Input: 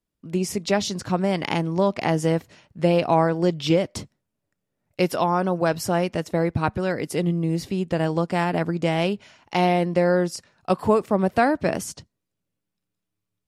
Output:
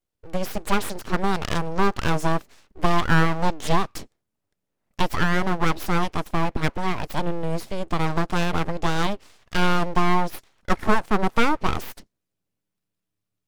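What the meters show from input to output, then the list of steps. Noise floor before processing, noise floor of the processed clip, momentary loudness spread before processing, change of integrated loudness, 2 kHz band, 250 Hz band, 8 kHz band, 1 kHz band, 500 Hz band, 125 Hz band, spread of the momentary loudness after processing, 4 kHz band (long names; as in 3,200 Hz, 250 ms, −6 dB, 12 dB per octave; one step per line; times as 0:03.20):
−82 dBFS, −82 dBFS, 7 LU, −2.0 dB, +3.5 dB, −3.0 dB, −2.5 dB, +1.0 dB, −6.0 dB, −1.5 dB, 8 LU, +1.0 dB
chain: dynamic equaliser 610 Hz, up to +4 dB, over −29 dBFS, Q 1
full-wave rectification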